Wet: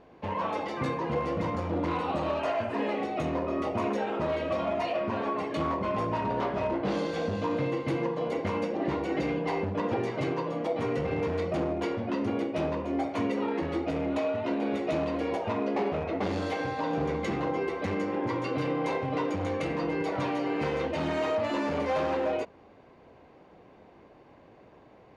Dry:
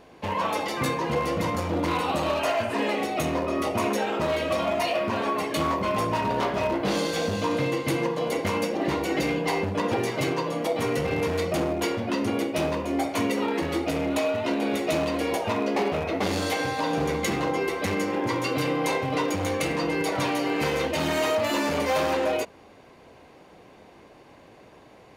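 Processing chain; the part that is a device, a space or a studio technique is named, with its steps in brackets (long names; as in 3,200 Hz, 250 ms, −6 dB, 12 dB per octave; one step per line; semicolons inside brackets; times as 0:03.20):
through cloth (low-pass filter 6,400 Hz 12 dB per octave; high-shelf EQ 2,600 Hz −11.5 dB)
level −3 dB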